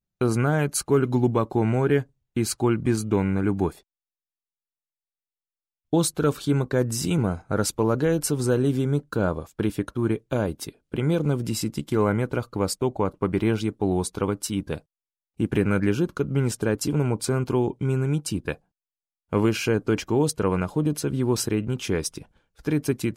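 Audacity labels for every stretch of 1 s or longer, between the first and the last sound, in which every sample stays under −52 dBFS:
3.810000	5.930000	silence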